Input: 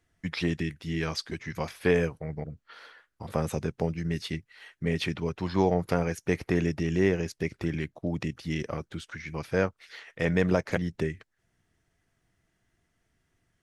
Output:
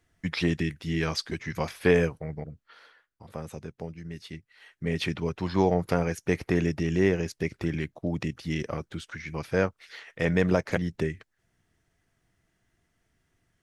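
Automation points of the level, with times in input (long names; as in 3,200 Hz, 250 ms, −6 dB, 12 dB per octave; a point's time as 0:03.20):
0:02.02 +2.5 dB
0:03.25 −9 dB
0:04.20 −9 dB
0:05.06 +1 dB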